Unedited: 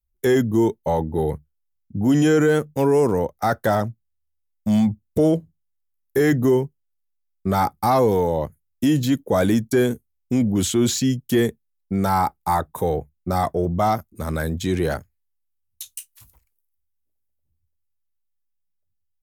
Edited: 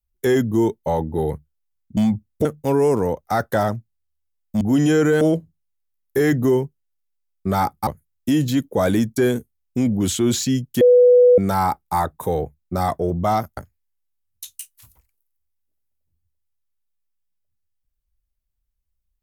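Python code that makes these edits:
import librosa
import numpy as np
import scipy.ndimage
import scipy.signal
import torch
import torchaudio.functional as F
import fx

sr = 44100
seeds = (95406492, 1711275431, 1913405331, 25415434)

y = fx.edit(x, sr, fx.swap(start_s=1.97, length_s=0.6, other_s=4.73, other_length_s=0.48),
    fx.cut(start_s=7.87, length_s=0.55),
    fx.bleep(start_s=11.36, length_s=0.57, hz=493.0, db=-8.0),
    fx.cut(start_s=14.12, length_s=0.83), tone=tone)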